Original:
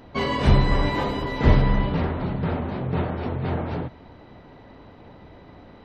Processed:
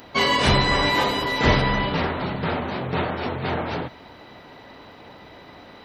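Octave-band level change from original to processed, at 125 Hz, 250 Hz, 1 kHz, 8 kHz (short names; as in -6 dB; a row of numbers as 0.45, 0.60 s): -4.0 dB, -1.0 dB, +5.5 dB, n/a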